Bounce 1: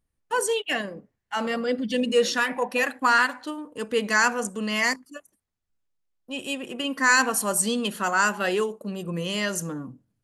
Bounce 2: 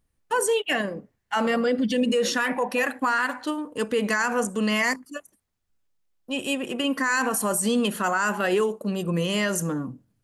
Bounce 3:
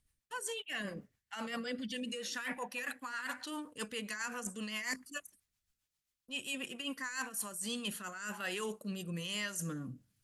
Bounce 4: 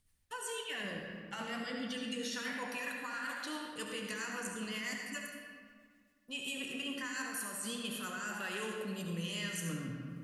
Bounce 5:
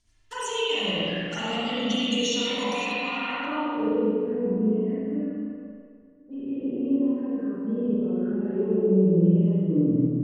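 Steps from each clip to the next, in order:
dynamic bell 4.4 kHz, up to -6 dB, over -40 dBFS, Q 0.98; peak limiter -20 dBFS, peak gain reduction 10.5 dB; trim +5 dB
amplifier tone stack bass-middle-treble 5-5-5; reverse; compression 6:1, threshold -45 dBFS, peak gain reduction 15.5 dB; reverse; rotary cabinet horn 7.5 Hz, later 1.2 Hz, at 6.88 s; trim +10 dB
compression 3:1, threshold -43 dBFS, peak gain reduction 8 dB; flange 1 Hz, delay 9.3 ms, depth 6.6 ms, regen -62%; reverberation RT60 1.9 s, pre-delay 65 ms, DRR 0.5 dB; trim +7 dB
low-pass sweep 6.2 kHz -> 380 Hz, 2.82–4.03 s; touch-sensitive flanger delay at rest 3.1 ms, full sweep at -38.5 dBFS; spring tank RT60 1.6 s, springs 37/47 ms, chirp 55 ms, DRR -8.5 dB; trim +7.5 dB

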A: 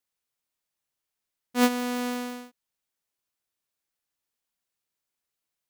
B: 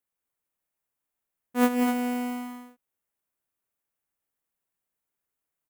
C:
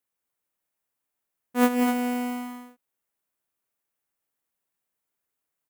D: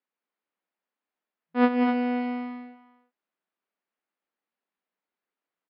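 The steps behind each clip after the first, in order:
peaking EQ 4.6 kHz -12 dB 1.4 oct; on a send: loudspeakers at several distances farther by 64 m -6 dB, 86 m -6 dB
bass shelf 98 Hz -6 dB; trim +2 dB
tone controls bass 0 dB, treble -12 dB; speakerphone echo 350 ms, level -16 dB; FFT band-pass 170–5200 Hz

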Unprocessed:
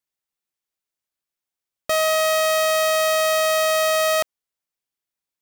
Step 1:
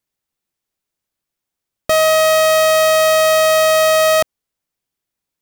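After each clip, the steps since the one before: bass shelf 440 Hz +8 dB; trim +5 dB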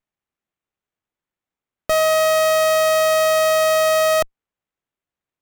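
sliding maximum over 9 samples; trim -5 dB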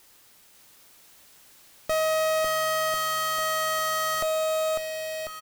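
word length cut 8-bit, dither triangular; on a send: bouncing-ball echo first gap 550 ms, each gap 0.9×, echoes 5; on the sum: trim -8 dB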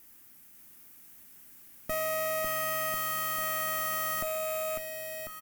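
rattle on loud lows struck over -47 dBFS, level -32 dBFS; ten-band graphic EQ 250 Hz +7 dB, 500 Hz -8 dB, 1 kHz -5 dB, 4 kHz -11 dB, 8 kHz -4 dB, 16 kHz +7 dB; trim -1.5 dB

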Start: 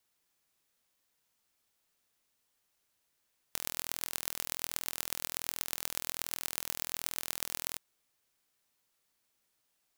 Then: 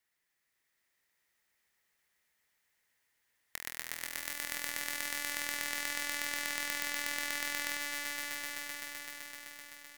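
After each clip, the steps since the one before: peaking EQ 1.9 kHz +14 dB 0.48 oct; on a send: echo with a slow build-up 128 ms, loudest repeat 5, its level -6.5 dB; on the sum: trim -6 dB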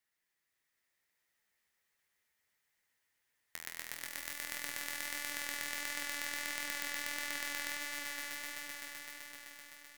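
flange 1.5 Hz, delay 6.5 ms, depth 7.2 ms, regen +57%; trim +1 dB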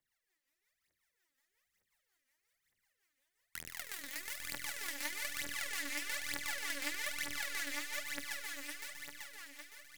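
rotary cabinet horn 5.5 Hz; phaser 1.1 Hz, delay 3.9 ms, feedback 80%; trim -2 dB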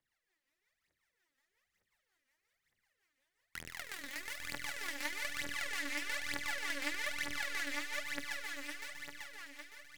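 low-pass 3.7 kHz 6 dB/octave; trim +3 dB

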